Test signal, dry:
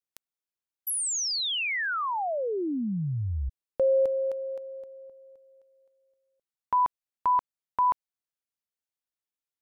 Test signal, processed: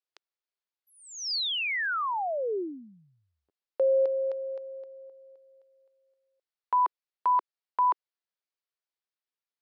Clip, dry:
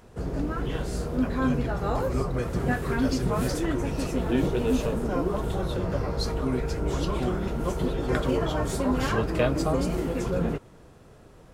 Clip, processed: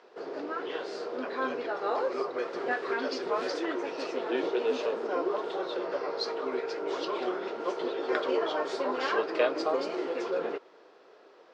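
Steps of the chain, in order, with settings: elliptic band-pass 380–4900 Hz, stop band 70 dB

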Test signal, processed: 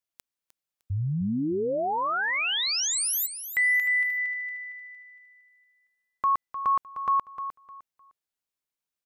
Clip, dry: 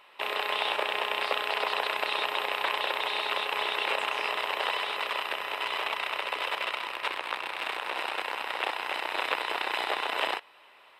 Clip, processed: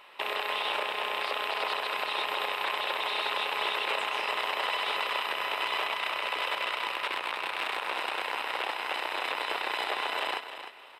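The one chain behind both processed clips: peak limiter -22 dBFS; feedback delay 305 ms, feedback 25%, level -10.5 dB; trim +3 dB

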